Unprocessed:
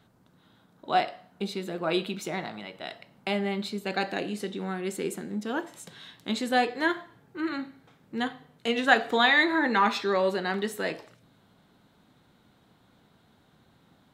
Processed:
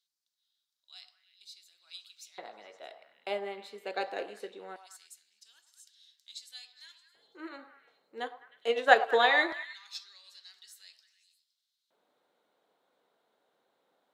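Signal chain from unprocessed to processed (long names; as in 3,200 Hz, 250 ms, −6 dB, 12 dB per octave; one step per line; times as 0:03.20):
auto-filter high-pass square 0.21 Hz 490–4,800 Hz
echo through a band-pass that steps 103 ms, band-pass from 890 Hz, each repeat 0.7 octaves, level −6.5 dB
expander for the loud parts 1.5 to 1, over −35 dBFS
level −2 dB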